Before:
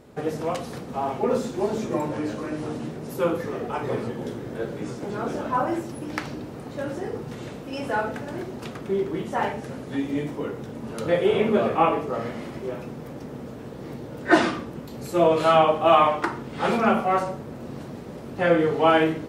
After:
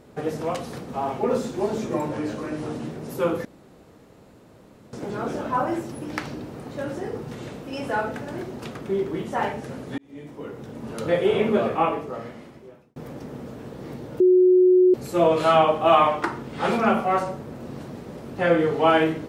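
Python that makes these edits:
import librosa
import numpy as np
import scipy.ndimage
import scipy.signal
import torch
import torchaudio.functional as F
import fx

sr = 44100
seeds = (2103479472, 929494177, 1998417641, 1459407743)

y = fx.edit(x, sr, fx.room_tone_fill(start_s=3.45, length_s=1.48),
    fx.fade_in_span(start_s=9.98, length_s=0.91),
    fx.fade_out_span(start_s=11.53, length_s=1.43),
    fx.bleep(start_s=14.2, length_s=0.74, hz=366.0, db=-12.0), tone=tone)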